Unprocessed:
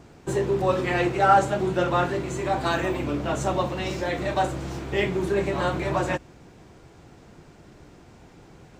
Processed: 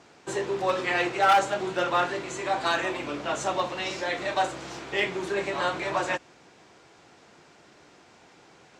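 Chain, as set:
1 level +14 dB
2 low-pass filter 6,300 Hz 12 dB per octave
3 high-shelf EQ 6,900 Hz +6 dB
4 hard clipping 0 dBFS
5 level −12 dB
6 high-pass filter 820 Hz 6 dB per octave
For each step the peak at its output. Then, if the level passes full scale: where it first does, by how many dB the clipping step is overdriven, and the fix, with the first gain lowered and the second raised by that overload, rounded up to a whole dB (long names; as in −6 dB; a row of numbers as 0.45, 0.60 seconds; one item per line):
+8.5, +8.5, +8.5, 0.0, −12.0, −9.5 dBFS
step 1, 8.5 dB
step 1 +5 dB, step 5 −3 dB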